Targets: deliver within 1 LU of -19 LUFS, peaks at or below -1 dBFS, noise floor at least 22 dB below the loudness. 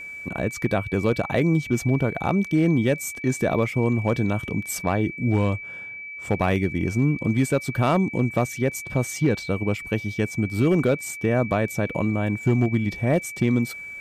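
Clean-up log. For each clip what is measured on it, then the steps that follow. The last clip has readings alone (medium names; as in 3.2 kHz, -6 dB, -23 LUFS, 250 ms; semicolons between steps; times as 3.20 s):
clipped samples 0.3%; clipping level -12.5 dBFS; steady tone 2.3 kHz; tone level -34 dBFS; loudness -23.5 LUFS; peak level -12.5 dBFS; loudness target -19.0 LUFS
-> clip repair -12.5 dBFS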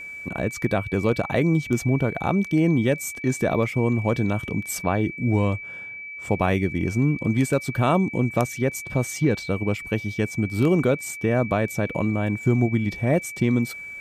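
clipped samples 0.0%; steady tone 2.3 kHz; tone level -34 dBFS
-> band-stop 2.3 kHz, Q 30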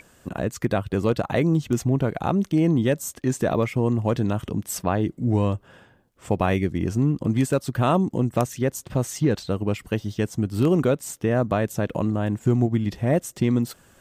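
steady tone not found; loudness -24.0 LUFS; peak level -5.0 dBFS; loudness target -19.0 LUFS
-> trim +5 dB; peak limiter -1 dBFS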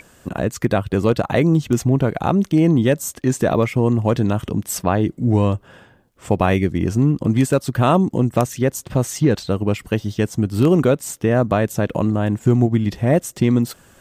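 loudness -19.0 LUFS; peak level -1.0 dBFS; noise floor -51 dBFS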